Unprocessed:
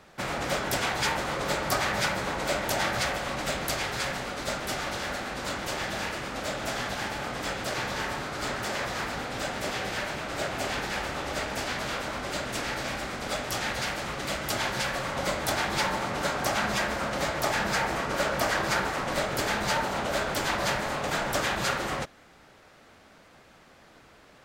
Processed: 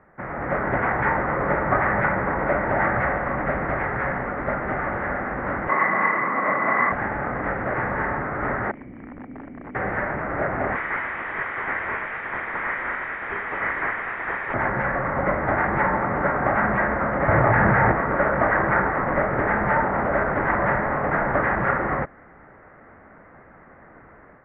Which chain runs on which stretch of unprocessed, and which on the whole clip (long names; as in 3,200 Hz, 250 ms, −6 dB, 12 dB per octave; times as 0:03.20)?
0:05.69–0:06.92: high-pass filter 160 Hz 24 dB per octave + hollow resonant body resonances 1,100/2,000 Hz, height 16 dB, ringing for 30 ms
0:08.71–0:09.75: formant resonators in series i + wrap-around overflow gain 38 dB
0:10.75–0:14.54: voice inversion scrambler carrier 3,800 Hz + mid-hump overdrive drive 13 dB, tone 2,300 Hz, clips at −18.5 dBFS
0:17.28–0:17.92: parametric band 110 Hz +13 dB 0.55 octaves + envelope flattener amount 100%
whole clip: Chebyshev low-pass filter 2,000 Hz, order 5; automatic gain control gain up to 8 dB